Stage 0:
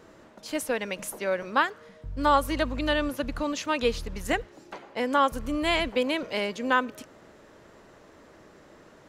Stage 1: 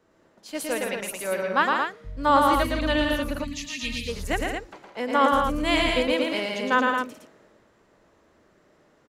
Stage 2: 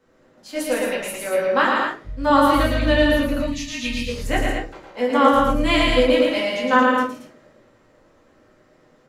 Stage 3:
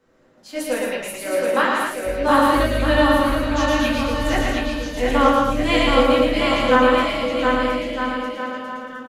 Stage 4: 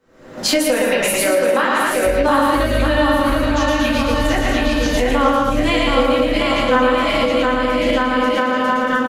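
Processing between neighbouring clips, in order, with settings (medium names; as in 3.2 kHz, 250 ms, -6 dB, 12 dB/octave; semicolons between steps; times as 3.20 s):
loudspeakers at several distances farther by 39 m -3 dB, 56 m -7 dB, 78 m -5 dB; time-frequency box 3.44–4.08 s, 290–1700 Hz -20 dB; three bands expanded up and down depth 40%
simulated room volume 150 m³, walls furnished, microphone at 2.1 m; trim -1 dB
bouncing-ball echo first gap 720 ms, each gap 0.75×, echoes 5; trim -1 dB
recorder AGC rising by 61 dB/s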